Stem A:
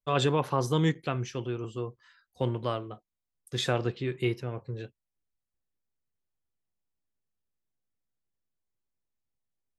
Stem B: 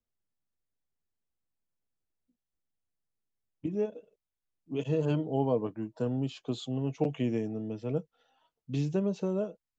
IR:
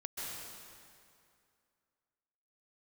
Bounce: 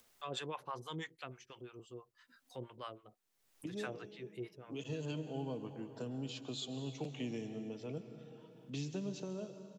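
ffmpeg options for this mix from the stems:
-filter_complex "[0:a]acrossover=split=650[link_01][link_02];[link_01]aeval=exprs='val(0)*(1-1/2+1/2*cos(2*PI*6.1*n/s))':channel_layout=same[link_03];[link_02]aeval=exprs='val(0)*(1-1/2-1/2*cos(2*PI*6.1*n/s))':channel_layout=same[link_04];[link_03][link_04]amix=inputs=2:normalize=0,adelay=150,volume=-8.5dB[link_05];[1:a]lowshelf=frequency=120:gain=-8,acrossover=split=240|3000[link_06][link_07][link_08];[link_07]acompressor=threshold=-44dB:ratio=6[link_09];[link_06][link_09][link_08]amix=inputs=3:normalize=0,volume=-0.5dB,asplit=2[link_10][link_11];[link_11]volume=-6.5dB[link_12];[2:a]atrim=start_sample=2205[link_13];[link_12][link_13]afir=irnorm=-1:irlink=0[link_14];[link_05][link_10][link_14]amix=inputs=3:normalize=0,lowshelf=frequency=300:gain=-11,acompressor=mode=upward:threshold=-50dB:ratio=2.5"

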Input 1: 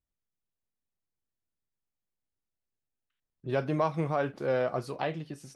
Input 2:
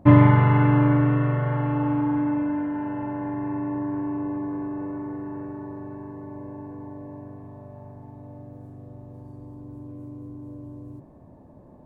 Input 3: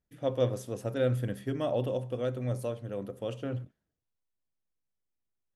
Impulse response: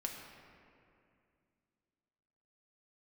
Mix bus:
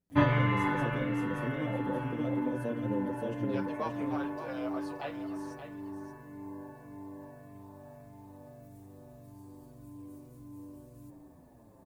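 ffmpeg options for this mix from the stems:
-filter_complex "[0:a]highpass=550,volume=-3.5dB,asplit=2[link_01][link_02];[link_02]volume=-9.5dB[link_03];[1:a]crystalizer=i=9:c=0,adelay=100,volume=-9dB,asplit=2[link_04][link_05];[link_05]volume=-6dB[link_06];[2:a]equalizer=frequency=230:width_type=o:width=1.9:gain=12.5,acompressor=threshold=-28dB:ratio=6,volume=-2dB,asplit=3[link_07][link_08][link_09];[link_08]volume=-3dB[link_10];[link_09]apad=whole_len=527138[link_11];[link_04][link_11]sidechaincompress=threshold=-32dB:ratio=8:attack=16:release=840[link_12];[3:a]atrim=start_sample=2205[link_13];[link_06][link_13]afir=irnorm=-1:irlink=0[link_14];[link_03][link_10]amix=inputs=2:normalize=0,aecho=0:1:575:1[link_15];[link_01][link_12][link_07][link_14][link_15]amix=inputs=5:normalize=0,asplit=2[link_16][link_17];[link_17]adelay=7.3,afreqshift=-1.7[link_18];[link_16][link_18]amix=inputs=2:normalize=1"

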